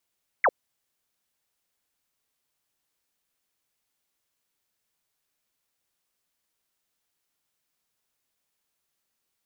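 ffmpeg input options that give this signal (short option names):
-f lavfi -i "aevalsrc='0.158*clip(t/0.002,0,1)*clip((0.05-t)/0.002,0,1)*sin(2*PI*2300*0.05/log(430/2300)*(exp(log(430/2300)*t/0.05)-1))':d=0.05:s=44100"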